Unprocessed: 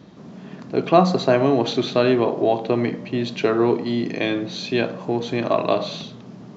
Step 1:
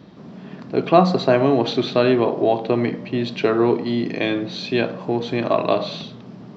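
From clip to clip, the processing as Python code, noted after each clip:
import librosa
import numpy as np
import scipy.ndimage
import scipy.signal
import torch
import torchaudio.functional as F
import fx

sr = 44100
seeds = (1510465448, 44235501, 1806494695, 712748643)

y = fx.peak_eq(x, sr, hz=6700.0, db=-11.0, octaves=0.3)
y = y * 10.0 ** (1.0 / 20.0)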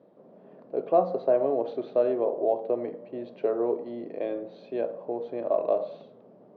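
y = fx.bandpass_q(x, sr, hz=540.0, q=3.4)
y = y * 10.0 ** (-2.0 / 20.0)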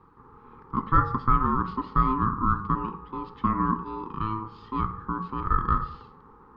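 y = x * np.sin(2.0 * np.pi * 650.0 * np.arange(len(x)) / sr)
y = y * 10.0 ** (4.5 / 20.0)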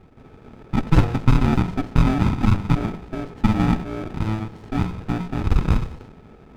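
y = fx.running_max(x, sr, window=33)
y = y * 10.0 ** (8.0 / 20.0)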